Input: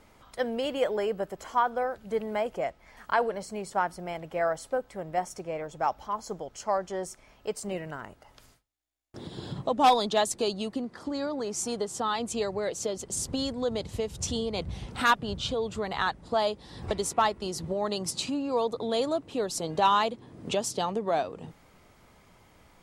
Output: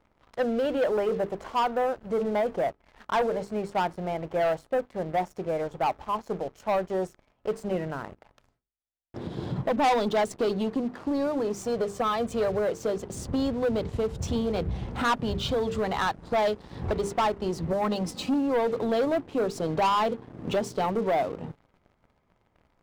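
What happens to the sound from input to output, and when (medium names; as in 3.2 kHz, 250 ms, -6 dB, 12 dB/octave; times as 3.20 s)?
11.61–12.59 s: comb 1.7 ms, depth 50%
15.16–16.62 s: treble shelf 2.7 kHz +7.5 dB
17.72–18.34 s: comb 3.9 ms, depth 60%
whole clip: low-pass 1 kHz 6 dB/octave; hum notches 50/100/150/200/250/300/350/400/450 Hz; waveshaping leveller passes 3; trim -4 dB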